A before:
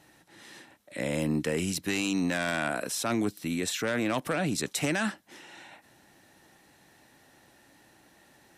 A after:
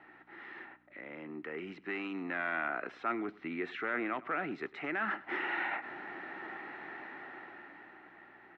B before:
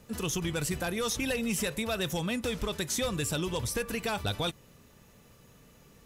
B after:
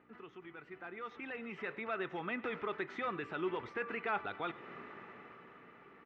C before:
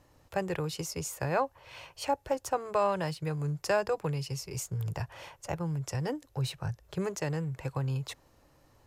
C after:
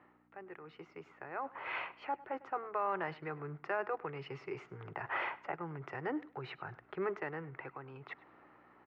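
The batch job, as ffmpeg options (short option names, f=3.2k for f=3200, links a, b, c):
-filter_complex "[0:a]areverse,acompressor=threshold=-45dB:ratio=8,areverse,alimiter=level_in=16.5dB:limit=-24dB:level=0:latency=1:release=233,volume=-16.5dB,dynaudnorm=f=220:g=13:m=13dB,aeval=exprs='val(0)+0.00141*(sin(2*PI*60*n/s)+sin(2*PI*2*60*n/s)/2+sin(2*PI*3*60*n/s)/3+sin(2*PI*4*60*n/s)/4+sin(2*PI*5*60*n/s)/5)':c=same,highpass=300,equalizer=f=370:t=q:w=4:g=7,equalizer=f=540:t=q:w=4:g=-6,equalizer=f=780:t=q:w=4:g=4,equalizer=f=1.3k:t=q:w=4:g=10,equalizer=f=2k:t=q:w=4:g=7,lowpass=f=2.5k:w=0.5412,lowpass=f=2.5k:w=1.3066,asplit=2[a][b];[b]aecho=0:1:102|204:0.1|0.024[c];[a][c]amix=inputs=2:normalize=0"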